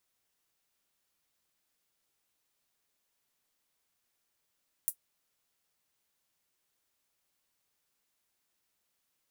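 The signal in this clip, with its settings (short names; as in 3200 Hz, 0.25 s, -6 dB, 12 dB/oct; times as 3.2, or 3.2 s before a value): closed hi-hat, high-pass 10000 Hz, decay 0.09 s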